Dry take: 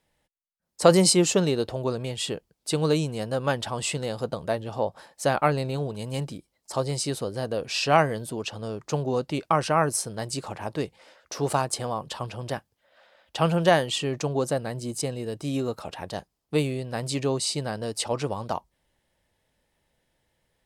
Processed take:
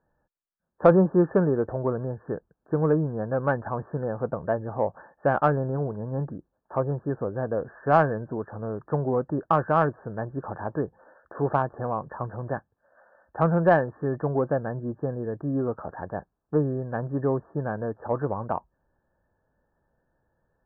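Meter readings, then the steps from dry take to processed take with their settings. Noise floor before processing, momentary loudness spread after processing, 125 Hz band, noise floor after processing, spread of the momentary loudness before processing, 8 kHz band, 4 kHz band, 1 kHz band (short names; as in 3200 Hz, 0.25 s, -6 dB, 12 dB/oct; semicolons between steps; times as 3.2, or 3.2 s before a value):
-78 dBFS, 13 LU, +1.0 dB, -78 dBFS, 13 LU, under -40 dB, under -25 dB, +0.5 dB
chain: brick-wall FIR low-pass 1800 Hz; in parallel at -6.5 dB: soft clip -14.5 dBFS, distortion -13 dB; on the sum: gain -2 dB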